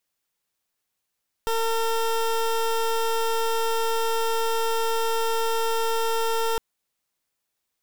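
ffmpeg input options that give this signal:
-f lavfi -i "aevalsrc='0.0668*(2*lt(mod(454*t,1),0.21)-1)':d=5.11:s=44100"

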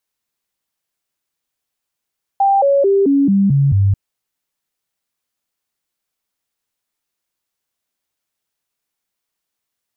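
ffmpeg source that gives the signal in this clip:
-f lavfi -i "aevalsrc='0.335*clip(min(mod(t,0.22),0.22-mod(t,0.22))/0.005,0,1)*sin(2*PI*789*pow(2,-floor(t/0.22)/2)*mod(t,0.22))':d=1.54:s=44100"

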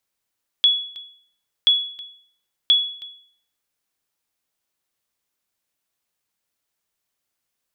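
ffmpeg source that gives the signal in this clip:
-f lavfi -i "aevalsrc='0.376*(sin(2*PI*3380*mod(t,1.03))*exp(-6.91*mod(t,1.03)/0.56)+0.1*sin(2*PI*3380*max(mod(t,1.03)-0.32,0))*exp(-6.91*max(mod(t,1.03)-0.32,0)/0.56))':d=3.09:s=44100"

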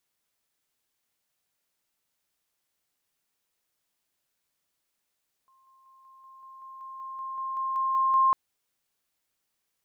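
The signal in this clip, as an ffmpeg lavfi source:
-f lavfi -i "aevalsrc='pow(10,(-60+3*floor(t/0.19))/20)*sin(2*PI*1060*t)':d=2.85:s=44100"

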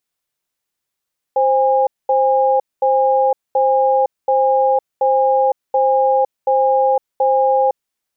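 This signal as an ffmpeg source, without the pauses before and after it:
-f lavfi -i "aevalsrc='0.2*(sin(2*PI*525*t)+sin(2*PI*816*t))*clip(min(mod(t,0.73),0.51-mod(t,0.73))/0.005,0,1)':d=6.35:s=44100"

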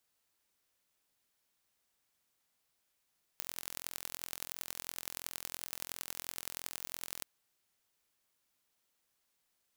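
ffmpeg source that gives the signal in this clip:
-f lavfi -i "aevalsrc='0.299*eq(mod(n,1028),0)*(0.5+0.5*eq(mod(n,4112),0))':d=3.83:s=44100"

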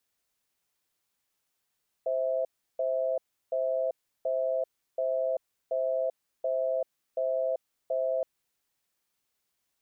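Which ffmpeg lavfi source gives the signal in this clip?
-f lavfi -i "aevalsrc='0.0376*(sin(2*PI*522*t)+sin(2*PI*654*t))*clip(min(mod(t,0.73),0.39-mod(t,0.73))/0.005,0,1)':d=6.17:s=44100"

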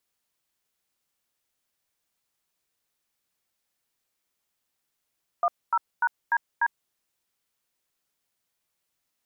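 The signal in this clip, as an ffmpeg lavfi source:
-f lavfi -i "aevalsrc='0.0794*clip(min(mod(t,0.296),0.051-mod(t,0.296))/0.002,0,1)*(eq(floor(t/0.296),0)*(sin(2*PI*697*mod(t,0.296))+sin(2*PI*1209*mod(t,0.296)))+eq(floor(t/0.296),1)*(sin(2*PI*941*mod(t,0.296))+sin(2*PI*1336*mod(t,0.296)))+eq(floor(t/0.296),2)*(sin(2*PI*941*mod(t,0.296))+sin(2*PI*1477*mod(t,0.296)))+eq(floor(t/0.296),3)*(sin(2*PI*941*mod(t,0.296))+sin(2*PI*1633*mod(t,0.296)))+eq(floor(t/0.296),4)*(sin(2*PI*941*mod(t,0.296))+sin(2*PI*1633*mod(t,0.296))))':d=1.48:s=44100"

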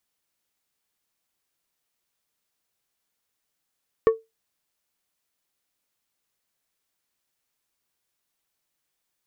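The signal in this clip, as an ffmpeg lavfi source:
-f lavfi -i "aevalsrc='0.335*pow(10,-3*t/0.2)*sin(2*PI*448*t)+0.1*pow(10,-3*t/0.105)*sin(2*PI*1120*t)+0.0299*pow(10,-3*t/0.076)*sin(2*PI*1792*t)+0.00891*pow(10,-3*t/0.065)*sin(2*PI*2240*t)+0.00266*pow(10,-3*t/0.054)*sin(2*PI*2912*t)':d=0.89:s=44100"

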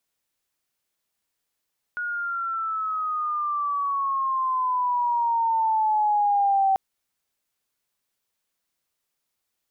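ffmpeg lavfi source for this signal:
-f lavfi -i "aevalsrc='pow(10,(-17+9*(t/4.79-1))/20)*sin(2*PI*1450*4.79/(-11*log(2)/12)*(exp(-11*log(2)/12*t/4.79)-1))':d=4.79:s=44100"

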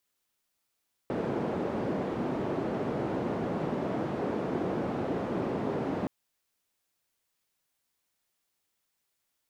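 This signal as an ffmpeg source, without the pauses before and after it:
-f lavfi -i "anoisesrc=c=white:d=4.97:r=44100:seed=1,highpass=f=160,lowpass=f=430,volume=-8.1dB"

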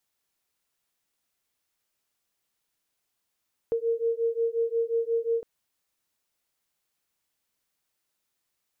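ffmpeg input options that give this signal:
-f lavfi -i "aevalsrc='0.0447*(sin(2*PI*458*t)+sin(2*PI*463.6*t))':d=1.71:s=44100"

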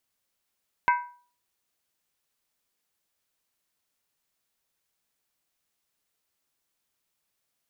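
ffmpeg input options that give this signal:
-f lavfi -i "aevalsrc='0.158*pow(10,-3*t/0.43)*sin(2*PI*975*t)+0.0841*pow(10,-3*t/0.341)*sin(2*PI*1554.2*t)+0.0447*pow(10,-3*t/0.294)*sin(2*PI*2082.6*t)+0.0237*pow(10,-3*t/0.284)*sin(2*PI*2238.6*t)+0.0126*pow(10,-3*t/0.264)*sin(2*PI*2586.7*t)':d=0.63:s=44100"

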